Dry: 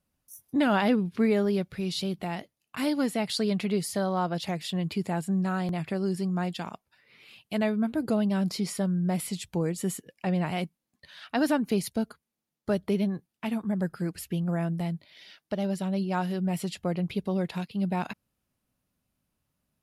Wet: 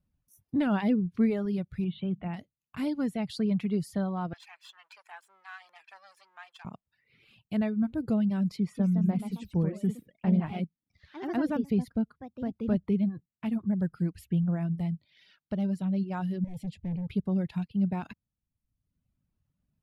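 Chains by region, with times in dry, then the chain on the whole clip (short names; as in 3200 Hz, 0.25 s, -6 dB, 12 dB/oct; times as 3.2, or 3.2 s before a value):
1.84–2.34 steep low-pass 3600 Hz 72 dB/oct + notches 50/100/150/200/250 Hz
4.33–6.65 minimum comb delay 1.2 ms + HPF 1000 Hz 24 dB/oct + high shelf 8000 Hz -10 dB
8.56–13.07 high shelf 4100 Hz -8.5 dB + echoes that change speed 0.189 s, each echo +2 st, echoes 2, each echo -6 dB
16.44–17.07 tilt shelf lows +4.5 dB, about 740 Hz + hard clip -32.5 dBFS + Butterworth band-stop 1300 Hz, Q 1.4
whole clip: reverb removal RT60 0.93 s; tone controls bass +14 dB, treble -7 dB; gain -7 dB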